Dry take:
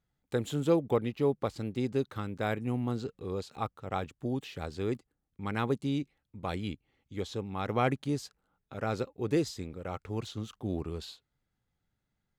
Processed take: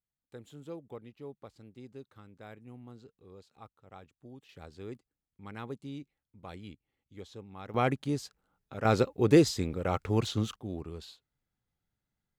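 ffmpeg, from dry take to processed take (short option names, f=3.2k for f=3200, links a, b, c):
-af "asetnsamples=n=441:p=0,asendcmd='4.49 volume volume -10.5dB;7.74 volume volume 0dB;8.85 volume volume 7.5dB;10.56 volume volume -4.5dB',volume=-17dB"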